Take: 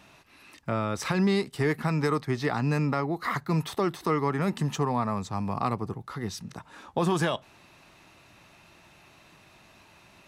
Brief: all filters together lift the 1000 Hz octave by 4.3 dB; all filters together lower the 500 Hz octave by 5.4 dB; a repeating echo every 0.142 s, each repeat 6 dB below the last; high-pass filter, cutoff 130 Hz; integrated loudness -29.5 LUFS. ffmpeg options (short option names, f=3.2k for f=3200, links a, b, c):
-af "highpass=130,equalizer=f=500:t=o:g=-9,equalizer=f=1k:t=o:g=7.5,aecho=1:1:142|284|426|568|710|852:0.501|0.251|0.125|0.0626|0.0313|0.0157,volume=-2dB"